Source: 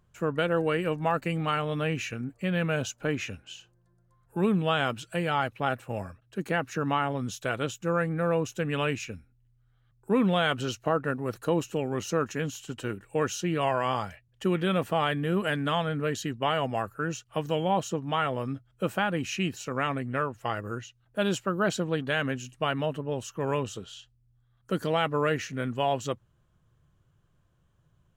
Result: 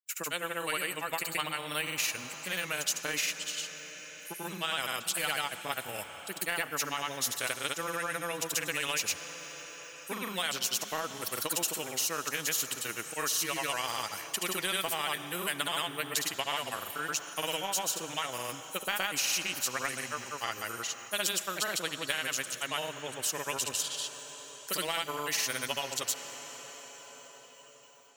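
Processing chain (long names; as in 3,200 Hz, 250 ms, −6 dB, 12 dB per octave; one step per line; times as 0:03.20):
spectral dynamics exaggerated over time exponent 1.5
high-pass filter 410 Hz 6 dB per octave
spectral tilt +4.5 dB per octave
downward compressor, threshold −32 dBFS, peak gain reduction 10.5 dB
granular cloud, pitch spread up and down by 0 semitones
convolution reverb RT60 5.5 s, pre-delay 6 ms, DRR 19.5 dB
every bin compressed towards the loudest bin 2 to 1
level +7 dB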